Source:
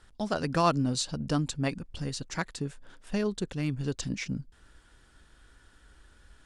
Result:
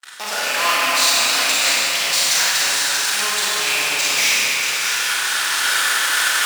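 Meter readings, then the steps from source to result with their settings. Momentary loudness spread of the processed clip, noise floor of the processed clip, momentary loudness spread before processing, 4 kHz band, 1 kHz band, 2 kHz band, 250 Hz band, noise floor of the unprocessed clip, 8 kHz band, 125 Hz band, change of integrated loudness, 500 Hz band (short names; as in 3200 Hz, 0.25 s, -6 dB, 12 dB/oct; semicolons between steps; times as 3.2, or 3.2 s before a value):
3 LU, -23 dBFS, 10 LU, +24.5 dB, +12.5 dB, +24.5 dB, -8.5 dB, -61 dBFS, +24.5 dB, -16.0 dB, +15.5 dB, +4.0 dB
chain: rattling part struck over -32 dBFS, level -25 dBFS; recorder AGC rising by 15 dB/s; in parallel at -4 dB: fuzz box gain 49 dB, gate -55 dBFS; on the sum: gate with hold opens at -23 dBFS; HPF 1200 Hz 12 dB/oct; split-band echo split 3000 Hz, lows 0.267 s, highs 0.635 s, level -5.5 dB; Schroeder reverb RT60 2.5 s, combs from 31 ms, DRR -7 dB; gain -3.5 dB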